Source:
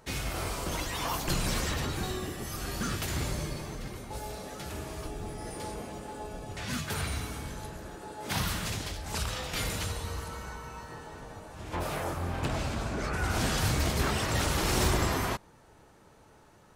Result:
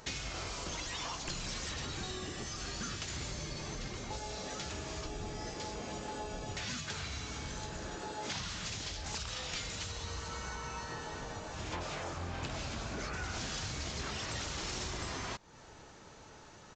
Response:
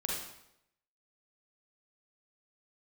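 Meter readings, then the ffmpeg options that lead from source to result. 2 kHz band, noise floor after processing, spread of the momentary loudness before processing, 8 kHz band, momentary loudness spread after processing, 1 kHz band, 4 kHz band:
−6.0 dB, −55 dBFS, 13 LU, −4.5 dB, 4 LU, −7.0 dB, −3.5 dB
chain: -af "highshelf=frequency=2400:gain=9.5,acompressor=threshold=-39dB:ratio=6,aresample=16000,aresample=44100,volume=2dB"

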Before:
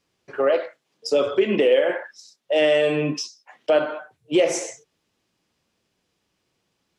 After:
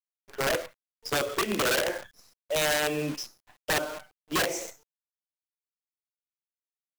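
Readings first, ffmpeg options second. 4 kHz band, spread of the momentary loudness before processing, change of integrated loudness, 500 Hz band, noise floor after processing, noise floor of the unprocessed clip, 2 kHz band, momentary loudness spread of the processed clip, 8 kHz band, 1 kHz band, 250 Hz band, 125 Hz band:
−1.0 dB, 17 LU, −7.0 dB, −11.5 dB, below −85 dBFS, −74 dBFS, −0.5 dB, 17 LU, +1.5 dB, −0.5 dB, −8.5 dB, −4.5 dB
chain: -af "aeval=exprs='(mod(4.47*val(0)+1,2)-1)/4.47':channel_layout=same,acrusher=bits=6:dc=4:mix=0:aa=0.000001,volume=-7.5dB"

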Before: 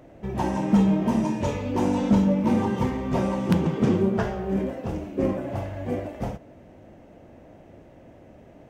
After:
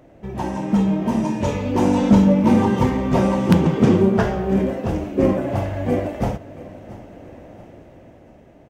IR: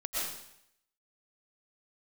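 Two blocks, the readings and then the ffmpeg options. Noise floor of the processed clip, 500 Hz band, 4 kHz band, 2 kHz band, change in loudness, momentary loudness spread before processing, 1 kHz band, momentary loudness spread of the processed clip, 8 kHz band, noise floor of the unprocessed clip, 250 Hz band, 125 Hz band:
−47 dBFS, +6.5 dB, +6.0 dB, +6.0 dB, +6.0 dB, 11 LU, +5.5 dB, 13 LU, can't be measured, −50 dBFS, +5.5 dB, +6.0 dB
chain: -filter_complex "[0:a]dynaudnorm=framelen=330:gausssize=9:maxgain=9dB,asplit=2[link_01][link_02];[link_02]aecho=0:1:682|1364|2046:0.112|0.046|0.0189[link_03];[link_01][link_03]amix=inputs=2:normalize=0"

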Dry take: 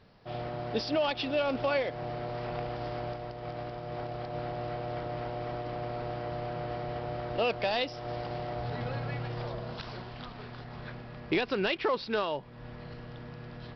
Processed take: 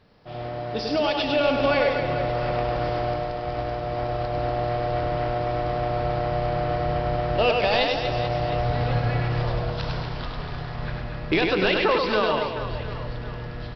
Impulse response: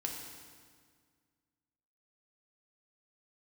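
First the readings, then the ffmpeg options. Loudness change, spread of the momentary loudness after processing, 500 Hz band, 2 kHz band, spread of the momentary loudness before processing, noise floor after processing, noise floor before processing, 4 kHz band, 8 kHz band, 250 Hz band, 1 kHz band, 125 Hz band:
+9.0 dB, 12 LU, +9.0 dB, +9.5 dB, 14 LU, −33 dBFS, −46 dBFS, +8.5 dB, can't be measured, +8.0 dB, +10.0 dB, +11.0 dB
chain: -filter_complex "[0:a]dynaudnorm=framelen=720:gausssize=3:maxgain=6dB,aecho=1:1:100|240|436|710.4|1095:0.631|0.398|0.251|0.158|0.1,asubboost=boost=2.5:cutoff=120,asplit=2[link_01][link_02];[1:a]atrim=start_sample=2205[link_03];[link_02][link_03]afir=irnorm=-1:irlink=0,volume=-4.5dB[link_04];[link_01][link_04]amix=inputs=2:normalize=0,volume=-2.5dB"

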